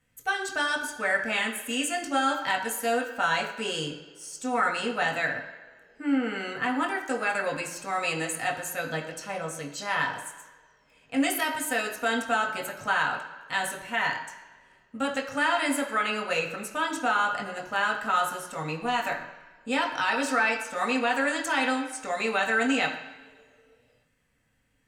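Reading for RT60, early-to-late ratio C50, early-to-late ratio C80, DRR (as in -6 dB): not exponential, 8.5 dB, 10.0 dB, -0.5 dB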